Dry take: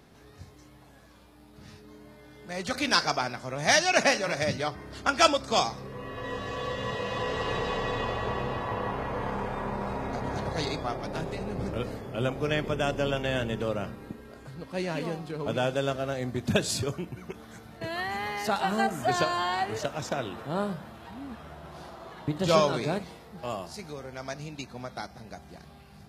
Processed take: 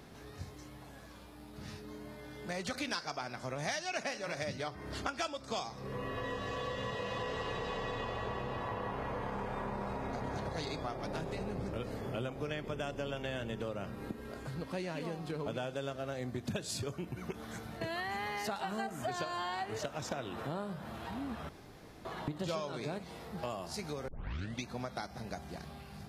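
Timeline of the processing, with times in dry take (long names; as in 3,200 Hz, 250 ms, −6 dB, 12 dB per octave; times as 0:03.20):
0:21.49–0:22.05: fill with room tone
0:24.08: tape start 0.57 s
whole clip: downward compressor 6 to 1, threshold −38 dBFS; level +2.5 dB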